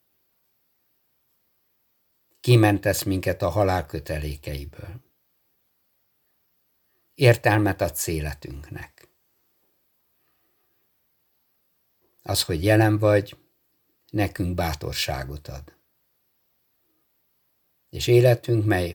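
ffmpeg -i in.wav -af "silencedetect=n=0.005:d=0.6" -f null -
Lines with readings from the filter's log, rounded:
silence_start: 0.00
silence_end: 2.35 | silence_duration: 2.35
silence_start: 4.98
silence_end: 7.18 | silence_duration: 2.19
silence_start: 9.04
silence_end: 12.19 | silence_duration: 3.15
silence_start: 13.35
silence_end: 14.09 | silence_duration: 0.74
silence_start: 15.71
silence_end: 17.93 | silence_duration: 2.22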